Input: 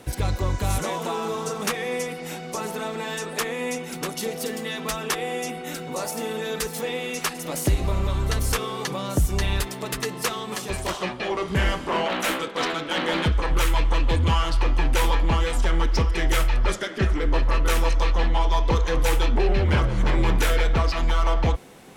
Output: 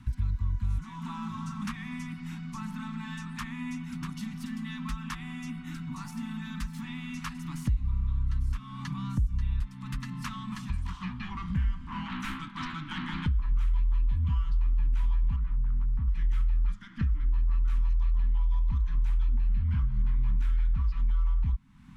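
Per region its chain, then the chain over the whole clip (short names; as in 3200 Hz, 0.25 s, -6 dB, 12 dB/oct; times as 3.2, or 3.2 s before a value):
15.36–16.08 LPF 1500 Hz + hard clip -22.5 dBFS
whole clip: Chebyshev band-stop 250–1000 Hz, order 3; RIAA curve playback; compressor 2.5:1, threshold -24 dBFS; gain -7 dB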